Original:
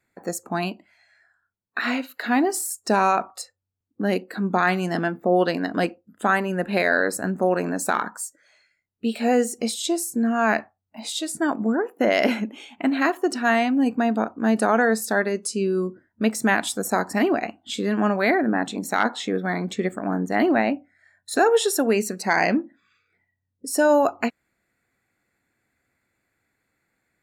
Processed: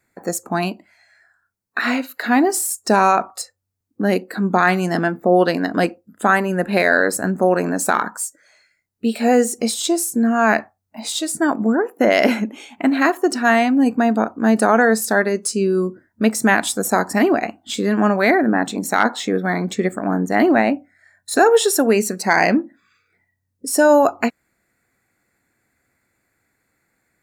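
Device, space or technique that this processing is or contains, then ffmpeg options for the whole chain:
exciter from parts: -filter_complex "[0:a]asplit=2[link_01][link_02];[link_02]highpass=frequency=2900:width=0.5412,highpass=frequency=2900:width=1.3066,asoftclip=type=tanh:threshold=-34.5dB,volume=-5dB[link_03];[link_01][link_03]amix=inputs=2:normalize=0,volume=5dB"

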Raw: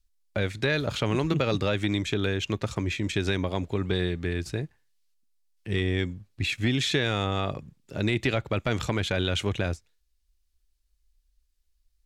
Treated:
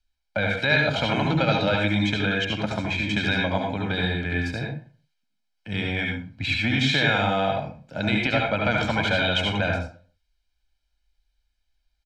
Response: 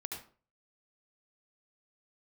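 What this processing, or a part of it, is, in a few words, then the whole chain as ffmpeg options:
microphone above a desk: -filter_complex "[0:a]aecho=1:1:1.3:0.84[link_01];[1:a]atrim=start_sample=2205[link_02];[link_01][link_02]afir=irnorm=-1:irlink=0,acrossover=split=180 4900:gain=0.251 1 0.158[link_03][link_04][link_05];[link_03][link_04][link_05]amix=inputs=3:normalize=0,volume=6dB"

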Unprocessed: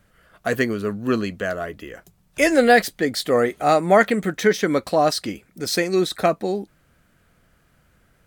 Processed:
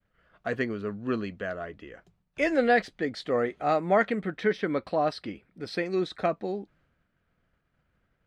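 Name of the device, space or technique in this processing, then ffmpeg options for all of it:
hearing-loss simulation: -filter_complex "[0:a]asettb=1/sr,asplit=3[link_01][link_02][link_03];[link_01]atrim=end=4.194[link_04];[link_02]atrim=start=4.19:end=5.86,asetpts=PTS-STARTPTS,afade=type=in:duration=0.004:curve=qsin,afade=type=out:start_time=1.666:duration=0.004:curve=qsin,equalizer=frequency=6600:width=4.9:gain=-14[link_05];[link_03]atrim=start=5.856[link_06];[link_04][link_05]acrossfade=duration=0.004:curve1=hsin:curve2=qsin[link_07];[link_07][link_06]acrossfade=duration=0.004:curve1=qsin:curve2=hsin,lowpass=3500,agate=range=-33dB:threshold=-54dB:ratio=3:detection=peak,volume=-8dB"

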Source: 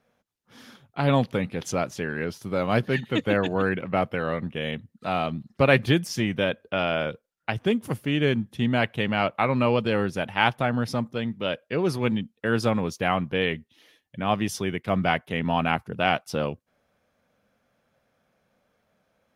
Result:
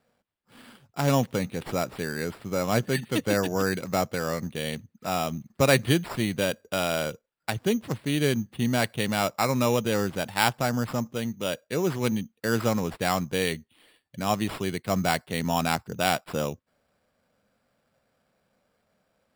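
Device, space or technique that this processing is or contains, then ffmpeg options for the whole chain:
crushed at another speed: -af "asetrate=22050,aresample=44100,acrusher=samples=14:mix=1:aa=0.000001,asetrate=88200,aresample=44100,volume=-1.5dB"

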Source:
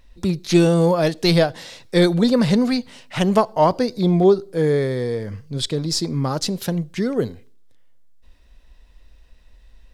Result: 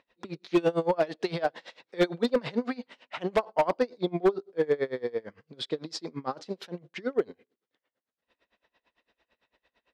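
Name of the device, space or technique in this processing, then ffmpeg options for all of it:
helicopter radio: -af "highpass=360,lowpass=3000,aeval=exprs='val(0)*pow(10,-26*(0.5-0.5*cos(2*PI*8.9*n/s))/20)':channel_layout=same,asoftclip=type=hard:threshold=-16dB"

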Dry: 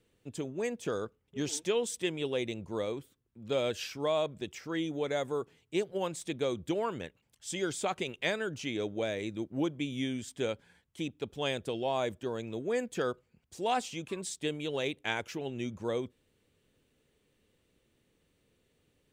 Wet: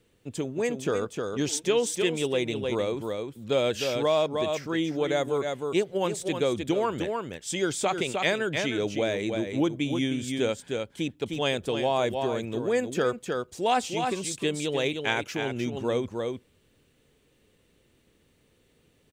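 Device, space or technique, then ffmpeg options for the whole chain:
ducked delay: -filter_complex "[0:a]asplit=3[link_01][link_02][link_03];[link_02]adelay=308,volume=-4dB[link_04];[link_03]apad=whole_len=856817[link_05];[link_04][link_05]sidechaincompress=threshold=-37dB:ratio=8:attack=21:release=121[link_06];[link_01][link_06]amix=inputs=2:normalize=0,volume=6dB"

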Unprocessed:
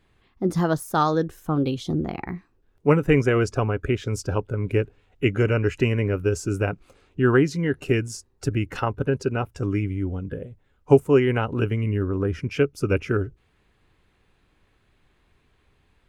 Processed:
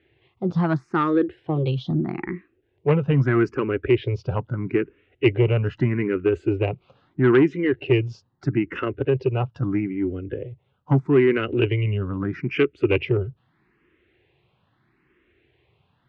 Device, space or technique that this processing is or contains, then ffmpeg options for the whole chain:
barber-pole phaser into a guitar amplifier: -filter_complex "[0:a]asplit=2[link_01][link_02];[link_02]afreqshift=0.78[link_03];[link_01][link_03]amix=inputs=2:normalize=1,asoftclip=type=tanh:threshold=-15.5dB,highpass=89,equalizer=frequency=130:width_type=q:width=4:gain=7,equalizer=frequency=350:width_type=q:width=4:gain=9,equalizer=frequency=2000:width_type=q:width=4:gain=4,equalizer=frequency=2800:width_type=q:width=4:gain=3,lowpass=frequency=3700:width=0.5412,lowpass=frequency=3700:width=1.3066,asplit=3[link_04][link_05][link_06];[link_04]afade=type=out:start_time=11.42:duration=0.02[link_07];[link_05]adynamicequalizer=threshold=0.00631:dfrequency=3300:dqfactor=0.75:tfrequency=3300:tqfactor=0.75:attack=5:release=100:ratio=0.375:range=3:mode=boostabove:tftype=bell,afade=type=in:start_time=11.42:duration=0.02,afade=type=out:start_time=13.04:duration=0.02[link_08];[link_06]afade=type=in:start_time=13.04:duration=0.02[link_09];[link_07][link_08][link_09]amix=inputs=3:normalize=0,volume=2dB"

